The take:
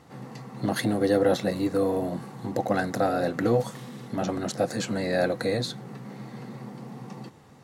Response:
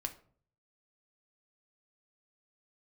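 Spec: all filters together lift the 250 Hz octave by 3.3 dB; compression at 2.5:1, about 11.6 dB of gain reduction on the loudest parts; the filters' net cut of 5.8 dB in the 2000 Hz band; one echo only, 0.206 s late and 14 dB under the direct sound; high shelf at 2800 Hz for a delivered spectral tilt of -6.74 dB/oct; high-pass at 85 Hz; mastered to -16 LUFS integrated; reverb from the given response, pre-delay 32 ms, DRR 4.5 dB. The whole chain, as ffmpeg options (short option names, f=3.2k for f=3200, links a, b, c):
-filter_complex "[0:a]highpass=85,equalizer=f=250:t=o:g=4.5,equalizer=f=2k:t=o:g=-5,highshelf=f=2.8k:g=-8,acompressor=threshold=-35dB:ratio=2.5,aecho=1:1:206:0.2,asplit=2[a][b];[1:a]atrim=start_sample=2205,adelay=32[c];[b][c]afir=irnorm=-1:irlink=0,volume=-4dB[d];[a][d]amix=inputs=2:normalize=0,volume=18.5dB"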